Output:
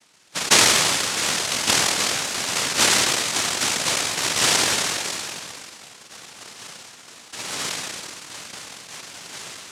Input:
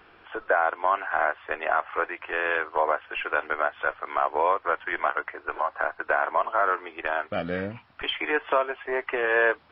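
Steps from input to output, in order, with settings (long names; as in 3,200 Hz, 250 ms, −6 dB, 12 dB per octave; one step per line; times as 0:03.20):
variable-slope delta modulation 16 kbit/s
tape delay 186 ms, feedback 69%, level −7 dB
on a send at −8 dB: convolution reverb, pre-delay 5 ms
on the sum: dynamic equaliser 600 Hz, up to +6 dB, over −45 dBFS, Q 0.88
low-pass filter sweep 600 Hz → 190 Hz, 0:04.89–0:05.66
cochlear-implant simulation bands 1
level that may fall only so fast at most 22 dB per second
level −4.5 dB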